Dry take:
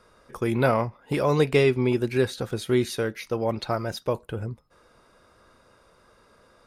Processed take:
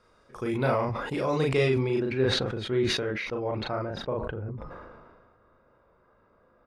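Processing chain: LPF 7900 Hz 12 dB/oct, from 1.96 s 2500 Hz, from 3.85 s 1500 Hz; doubler 38 ms -2.5 dB; sustainer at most 33 dB/s; gain -6.5 dB

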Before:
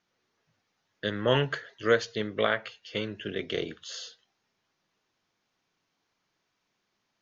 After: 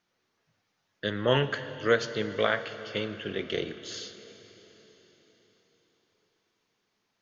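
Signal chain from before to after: plate-style reverb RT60 4.6 s, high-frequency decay 1×, DRR 11 dB

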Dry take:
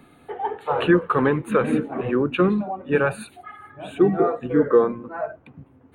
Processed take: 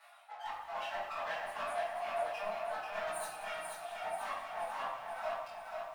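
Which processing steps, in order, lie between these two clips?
minimum comb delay 9.4 ms; reverb removal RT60 0.91 s; steep high-pass 570 Hz 72 dB/oct; reverb removal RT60 1.1 s; dynamic EQ 890 Hz, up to +4 dB, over -38 dBFS, Q 1.5; reverse; compressor 16:1, threshold -35 dBFS, peak gain reduction 21 dB; reverse; formant-preserving pitch shift +2 st; soft clip -33.5 dBFS, distortion -15 dB; chorus 0.62 Hz, delay 16.5 ms, depth 7.1 ms; on a send: split-band echo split 1400 Hz, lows 0.263 s, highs 0.189 s, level -14 dB; on the sum: shoebox room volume 240 m³, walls mixed, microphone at 1.6 m; lo-fi delay 0.487 s, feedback 55%, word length 11-bit, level -4 dB

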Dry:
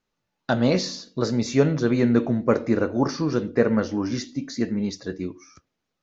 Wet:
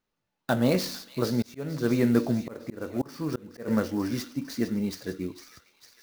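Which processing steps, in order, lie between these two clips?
thin delay 0.453 s, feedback 64%, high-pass 2400 Hz, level -10 dB; 1.42–3.68 auto swell 0.358 s; clock jitter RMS 0.02 ms; gain -3 dB

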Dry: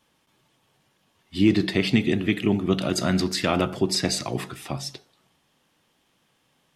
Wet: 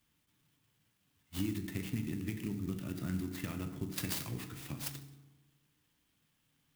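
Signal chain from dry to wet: 1.58–3.98 air absorption 370 m; compressor 5:1, threshold -24 dBFS, peak gain reduction 10.5 dB; passive tone stack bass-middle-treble 6-0-2; FDN reverb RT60 1.3 s, low-frequency decay 1×, high-frequency decay 0.5×, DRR 6 dB; clock jitter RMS 0.05 ms; gain +8.5 dB

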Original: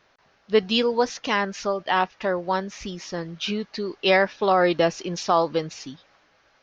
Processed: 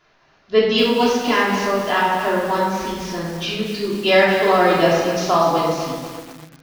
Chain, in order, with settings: shoebox room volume 840 m³, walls mixed, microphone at 3.1 m; lo-fi delay 0.246 s, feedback 55%, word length 5-bit, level -8.5 dB; gain -1.5 dB

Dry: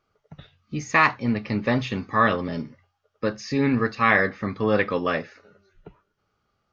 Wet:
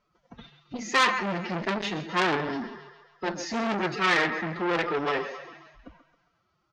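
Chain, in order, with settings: bell 160 Hz -6 dB 0.28 oct; transient shaper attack 0 dB, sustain +4 dB; flange 1.9 Hz, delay 2.8 ms, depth 9.7 ms, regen +79%; thinning echo 0.135 s, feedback 55%, high-pass 380 Hz, level -11 dB; formant-preserving pitch shift +8.5 st; downsampling 16000 Hz; core saturation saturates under 2900 Hz; gain +4.5 dB

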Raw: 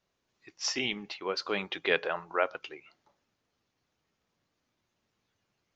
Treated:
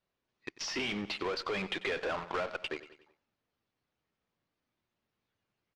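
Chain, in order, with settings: in parallel at -6 dB: fuzz box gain 41 dB, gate -48 dBFS; on the sum: feedback echo 93 ms, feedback 46%, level -19 dB; compressor 6:1, threshold -27 dBFS, peak gain reduction 11.5 dB; LPF 4300 Hz 12 dB/oct; gain -5.5 dB

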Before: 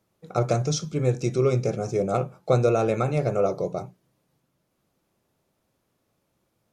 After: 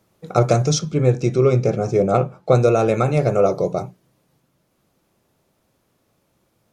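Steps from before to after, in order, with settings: 0.79–2.55 LPF 3400 Hz 6 dB/oct; in parallel at +1 dB: vocal rider 0.5 s

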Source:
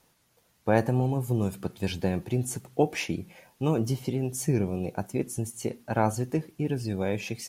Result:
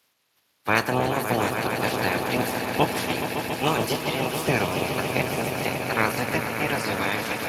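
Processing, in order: spectral limiter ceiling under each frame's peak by 28 dB; swelling echo 0.14 s, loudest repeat 5, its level -9.5 dB; gain +1.5 dB; Speex 24 kbps 32000 Hz

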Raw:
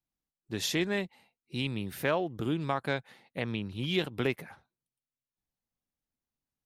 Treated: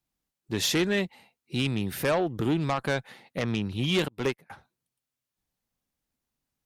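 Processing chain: added harmonics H 5 -12 dB, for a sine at -15.5 dBFS; 4.08–4.5 upward expander 2.5:1, over -41 dBFS

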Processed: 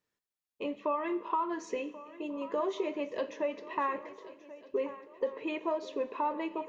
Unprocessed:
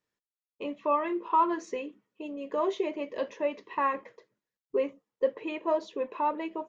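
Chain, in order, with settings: compressor, threshold -28 dBFS, peak gain reduction 9 dB; on a send: swung echo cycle 1.445 s, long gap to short 3:1, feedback 38%, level -17 dB; on the sum: Schroeder reverb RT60 1.1 s, combs from 30 ms, DRR 15.5 dB

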